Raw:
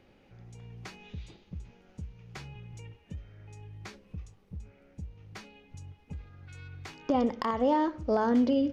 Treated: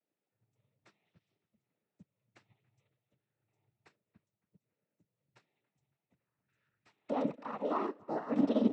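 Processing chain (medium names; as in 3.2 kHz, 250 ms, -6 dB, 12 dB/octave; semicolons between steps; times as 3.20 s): high-pass 230 Hz 6 dB/octave; treble shelf 5.4 kHz -11.5 dB; peak limiter -26.5 dBFS, peak gain reduction 9.5 dB; noise-vocoded speech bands 12; feedback echo behind a low-pass 280 ms, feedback 53%, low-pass 2.9 kHz, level -13 dB; upward expansion 2.5:1, over -52 dBFS; trim +6.5 dB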